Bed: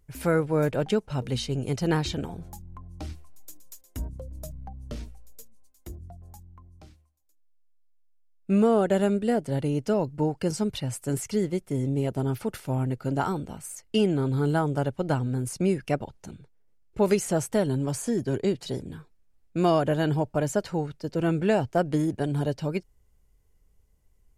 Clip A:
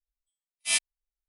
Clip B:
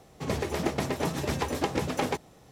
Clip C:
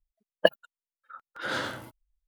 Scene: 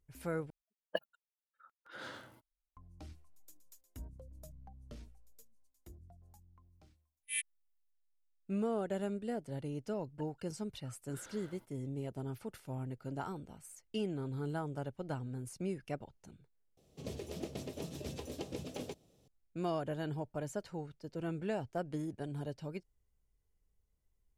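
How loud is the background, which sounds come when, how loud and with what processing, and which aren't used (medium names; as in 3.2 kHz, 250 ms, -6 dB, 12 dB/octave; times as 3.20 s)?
bed -14 dB
0.50 s: replace with C -16 dB
6.63 s: add A -15 dB + FFT filter 130 Hz 0 dB, 280 Hz -11 dB, 420 Hz -24 dB, 730 Hz -24 dB, 1.3 kHz -15 dB, 1.9 kHz +8 dB, 3.5 kHz -2 dB, 5 kHz -24 dB, 12 kHz +14 dB
9.75 s: add C -17.5 dB + compression, threshold -35 dBFS
16.77 s: replace with B -12.5 dB + high-order bell 1.3 kHz -11 dB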